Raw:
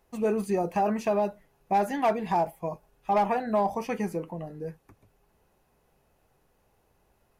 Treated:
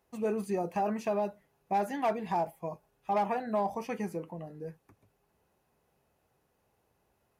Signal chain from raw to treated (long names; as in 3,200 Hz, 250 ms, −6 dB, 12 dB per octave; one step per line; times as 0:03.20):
high-pass filter 66 Hz
level −5 dB